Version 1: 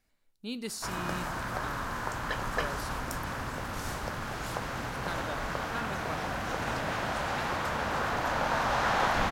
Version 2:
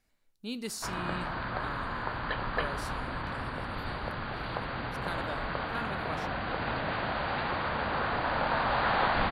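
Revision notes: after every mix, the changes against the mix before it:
background: add linear-phase brick-wall low-pass 4,800 Hz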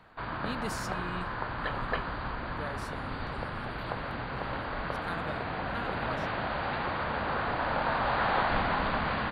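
background: entry −0.65 s
master: add high-shelf EQ 4,300 Hz −6 dB

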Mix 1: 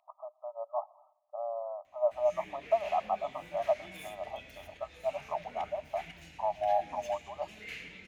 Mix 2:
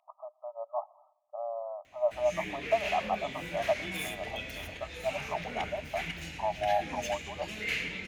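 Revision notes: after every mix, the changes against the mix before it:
background +11.0 dB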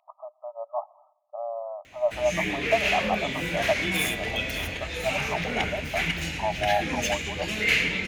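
speech +3.5 dB
background +10.5 dB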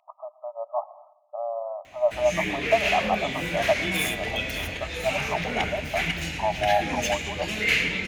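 speech: send +11.0 dB

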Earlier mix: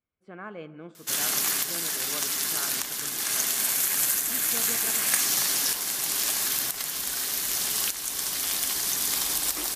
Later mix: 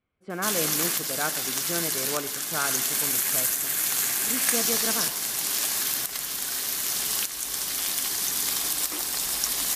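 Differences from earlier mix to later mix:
speech +10.0 dB
first sound: entry −0.65 s

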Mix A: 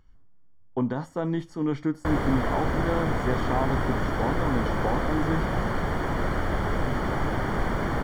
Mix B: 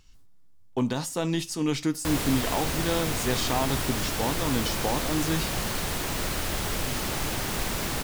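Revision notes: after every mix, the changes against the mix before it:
background −5.0 dB
master: remove Savitzky-Golay smoothing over 41 samples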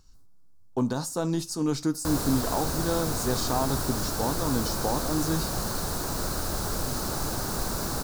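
master: add flat-topped bell 2,500 Hz −13 dB 1.1 octaves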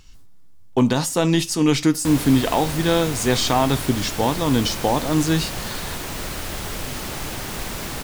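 speech +9.0 dB
master: add flat-topped bell 2,500 Hz +13 dB 1.1 octaves

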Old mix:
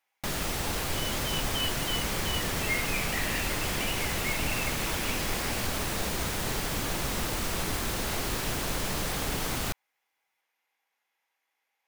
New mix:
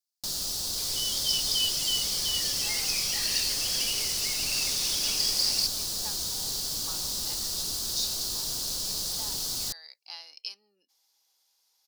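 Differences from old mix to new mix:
speech: entry +2.00 s
first sound −12.0 dB
master: add high shelf with overshoot 3,200 Hz +13.5 dB, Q 3

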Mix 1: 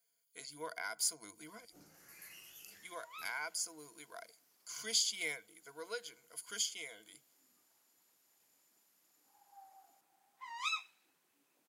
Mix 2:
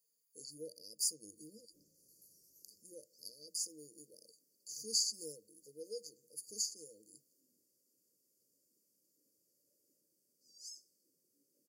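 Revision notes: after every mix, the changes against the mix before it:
first sound −9.0 dB
master: add linear-phase brick-wall band-stop 600–4,400 Hz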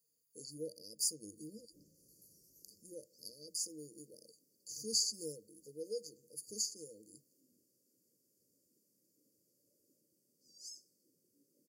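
master: add low-shelf EQ 430 Hz +9 dB

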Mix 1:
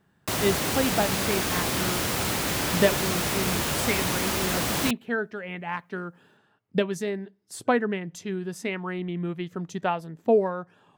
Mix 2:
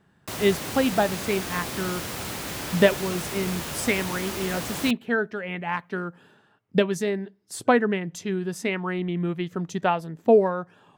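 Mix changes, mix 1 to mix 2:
speech +3.5 dB
background −6.0 dB

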